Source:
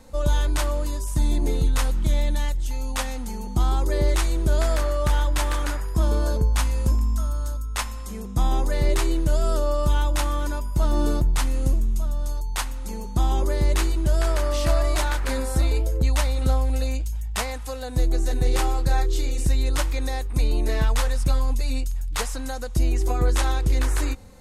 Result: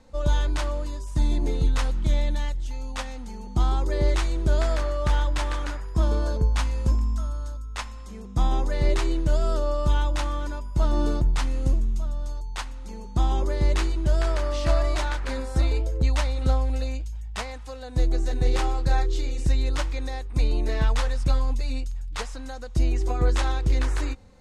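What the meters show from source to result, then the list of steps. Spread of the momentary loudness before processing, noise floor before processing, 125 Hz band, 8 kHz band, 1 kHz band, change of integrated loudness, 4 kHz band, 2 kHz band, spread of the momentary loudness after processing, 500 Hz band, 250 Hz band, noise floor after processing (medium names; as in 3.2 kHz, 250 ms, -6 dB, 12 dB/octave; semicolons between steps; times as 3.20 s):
6 LU, -32 dBFS, -1.5 dB, -8.0 dB, -2.0 dB, -2.0 dB, -3.0 dB, -2.5 dB, 10 LU, -2.0 dB, -2.0 dB, -37 dBFS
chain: low-pass 6.1 kHz 12 dB/octave; upward expansion 1.5:1, over -27 dBFS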